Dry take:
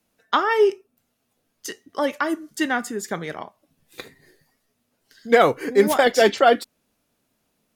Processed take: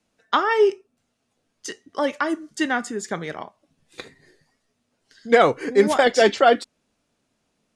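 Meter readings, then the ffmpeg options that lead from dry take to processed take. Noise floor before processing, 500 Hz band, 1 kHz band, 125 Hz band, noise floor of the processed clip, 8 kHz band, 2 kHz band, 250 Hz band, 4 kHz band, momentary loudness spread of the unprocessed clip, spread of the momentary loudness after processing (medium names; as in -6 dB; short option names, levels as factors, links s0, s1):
-73 dBFS, 0.0 dB, 0.0 dB, 0.0 dB, -74 dBFS, -1.0 dB, 0.0 dB, 0.0 dB, 0.0 dB, 17 LU, 17 LU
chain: -af "lowpass=f=9000:w=0.5412,lowpass=f=9000:w=1.3066"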